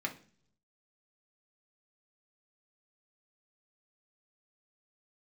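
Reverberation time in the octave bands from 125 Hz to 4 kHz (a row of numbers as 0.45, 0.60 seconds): 1.0, 0.80, 0.55, 0.40, 0.45, 0.55 seconds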